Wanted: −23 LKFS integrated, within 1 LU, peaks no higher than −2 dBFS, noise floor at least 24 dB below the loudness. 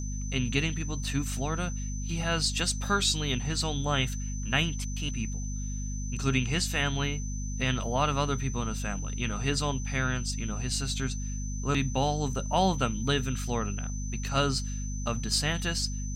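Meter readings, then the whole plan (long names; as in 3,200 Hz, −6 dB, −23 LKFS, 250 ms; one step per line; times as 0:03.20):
mains hum 50 Hz; hum harmonics up to 250 Hz; level of the hum −31 dBFS; interfering tone 6,100 Hz; level of the tone −42 dBFS; integrated loudness −30.0 LKFS; sample peak −11.0 dBFS; target loudness −23.0 LKFS
→ hum removal 50 Hz, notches 5
notch filter 6,100 Hz, Q 30
level +7 dB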